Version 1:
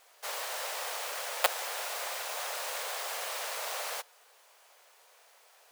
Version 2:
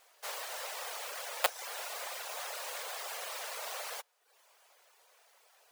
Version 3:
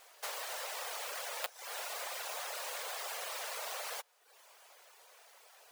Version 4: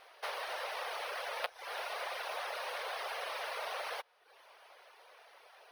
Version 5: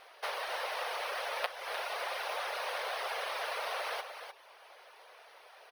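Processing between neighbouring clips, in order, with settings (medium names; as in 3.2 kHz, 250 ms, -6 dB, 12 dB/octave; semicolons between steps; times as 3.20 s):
reverb removal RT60 0.67 s; trim -2.5 dB
compression 6:1, threshold -43 dBFS, peak gain reduction 19 dB; trim +5 dB
boxcar filter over 6 samples; trim +4 dB
delay 302 ms -8.5 dB; trim +2.5 dB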